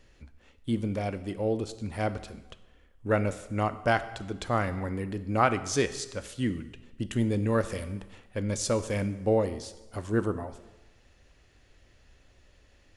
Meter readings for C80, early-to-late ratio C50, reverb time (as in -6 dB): 15.5 dB, 14.0 dB, 1.1 s